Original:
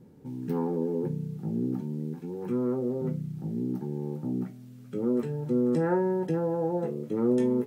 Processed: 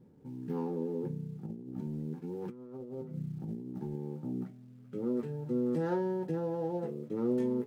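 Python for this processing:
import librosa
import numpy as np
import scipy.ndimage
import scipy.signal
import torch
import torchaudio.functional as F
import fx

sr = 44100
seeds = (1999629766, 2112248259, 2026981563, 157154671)

y = scipy.ndimage.median_filter(x, 15, mode='constant')
y = fx.over_compress(y, sr, threshold_db=-33.0, ratio=-0.5, at=(1.46, 3.96))
y = F.gain(torch.from_numpy(y), -6.0).numpy()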